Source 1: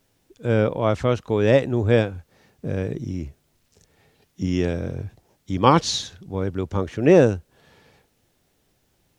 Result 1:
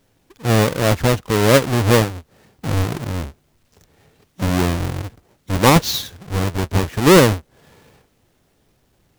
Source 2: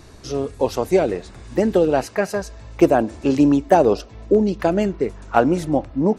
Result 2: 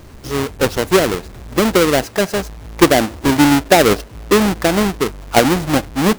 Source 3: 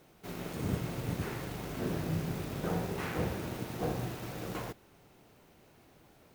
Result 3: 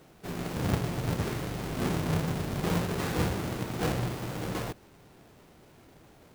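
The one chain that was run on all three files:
each half-wave held at its own peak

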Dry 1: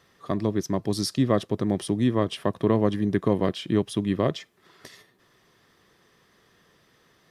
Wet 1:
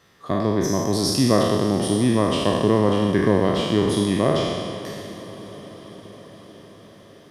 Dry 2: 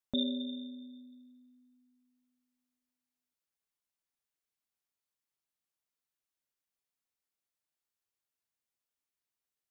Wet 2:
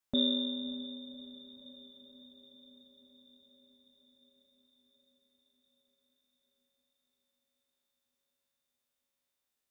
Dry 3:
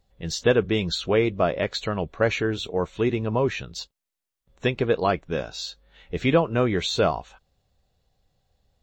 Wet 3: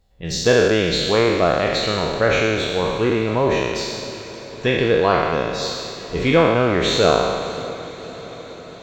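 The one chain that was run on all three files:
peak hold with a decay on every bin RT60 1.70 s
feedback delay with all-pass diffusion 579 ms, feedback 66%, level −16 dB
level +1.5 dB

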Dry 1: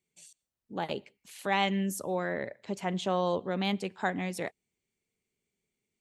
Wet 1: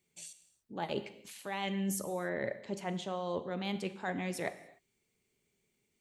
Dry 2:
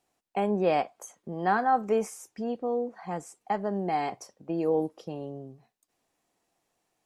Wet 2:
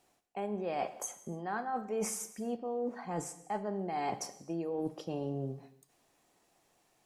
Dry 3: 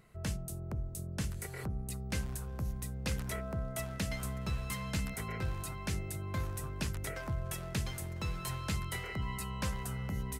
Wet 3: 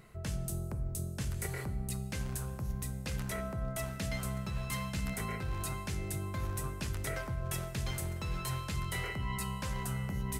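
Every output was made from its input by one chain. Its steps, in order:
reversed playback
downward compressor 12 to 1, threshold −38 dBFS
reversed playback
reverb whose tail is shaped and stops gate 320 ms falling, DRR 10.5 dB
level +5.5 dB

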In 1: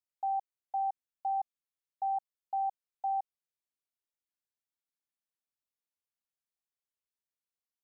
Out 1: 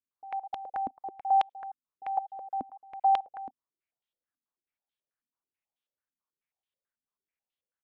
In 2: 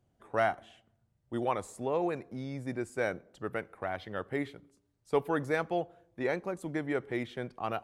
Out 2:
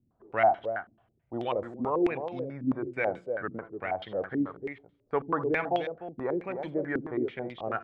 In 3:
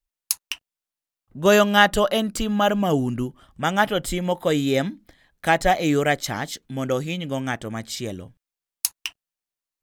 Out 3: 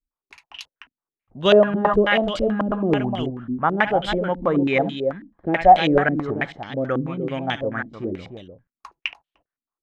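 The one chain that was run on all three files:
multi-tap delay 71/77/300 ms −17.5/−19/−8 dB
low-pass on a step sequencer 9.2 Hz 260–3,300 Hz
level −2 dB

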